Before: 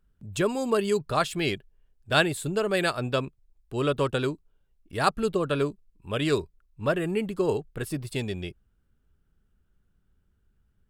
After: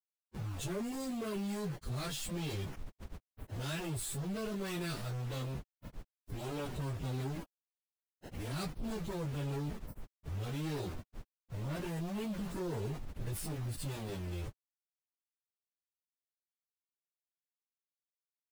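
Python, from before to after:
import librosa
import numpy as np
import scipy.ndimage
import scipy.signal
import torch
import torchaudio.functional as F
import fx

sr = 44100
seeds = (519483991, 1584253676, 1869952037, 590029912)

y = fx.tone_stack(x, sr, knobs='10-0-1')
y = np.where(np.abs(y) >= 10.0 ** (-59.0 / 20.0), y, 0.0)
y = fx.leveller(y, sr, passes=5)
y = fx.stretch_vocoder_free(y, sr, factor=1.7)
y = fx.env_flatten(y, sr, amount_pct=50)
y = y * librosa.db_to_amplitude(-1.5)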